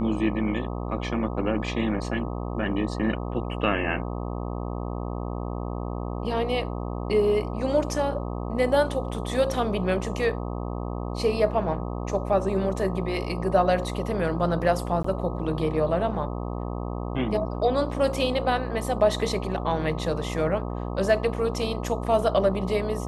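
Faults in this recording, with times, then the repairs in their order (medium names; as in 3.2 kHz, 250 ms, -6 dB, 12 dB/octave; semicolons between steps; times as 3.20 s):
buzz 60 Hz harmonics 21 -31 dBFS
15.03–15.04 s: dropout 14 ms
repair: de-hum 60 Hz, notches 21; interpolate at 15.03 s, 14 ms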